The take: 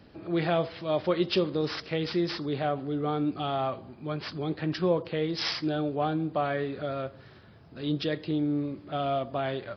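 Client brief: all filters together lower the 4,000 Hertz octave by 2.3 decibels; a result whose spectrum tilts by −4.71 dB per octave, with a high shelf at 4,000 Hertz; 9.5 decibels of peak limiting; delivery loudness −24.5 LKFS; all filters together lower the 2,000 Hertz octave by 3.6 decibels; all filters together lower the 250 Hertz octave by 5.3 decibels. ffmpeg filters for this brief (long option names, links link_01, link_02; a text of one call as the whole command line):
ffmpeg -i in.wav -af "equalizer=frequency=250:width_type=o:gain=-8,equalizer=frequency=2000:width_type=o:gain=-4.5,highshelf=frequency=4000:gain=4.5,equalizer=frequency=4000:width_type=o:gain=-4.5,volume=11.5dB,alimiter=limit=-14.5dB:level=0:latency=1" out.wav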